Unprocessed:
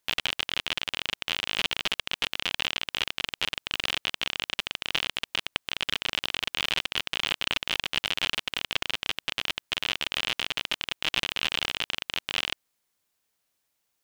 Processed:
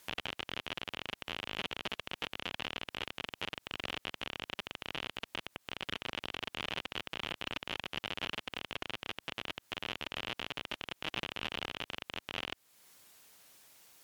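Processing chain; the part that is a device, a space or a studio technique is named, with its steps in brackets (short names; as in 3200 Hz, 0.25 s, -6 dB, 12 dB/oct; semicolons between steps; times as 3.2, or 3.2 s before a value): podcast mastering chain (HPF 83 Hz 6 dB/oct; de-esser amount 90%; compressor 2.5:1, threshold -52 dBFS, peak gain reduction 15 dB; limiter -37 dBFS, peak gain reduction 11 dB; gain +17.5 dB; MP3 96 kbps 44100 Hz)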